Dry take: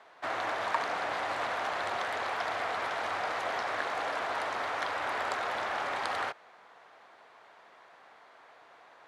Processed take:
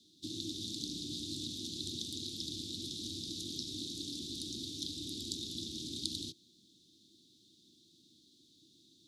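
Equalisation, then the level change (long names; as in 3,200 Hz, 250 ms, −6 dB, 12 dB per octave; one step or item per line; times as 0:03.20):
Chebyshev band-stop filter 330–3,600 Hz, order 5
+7.5 dB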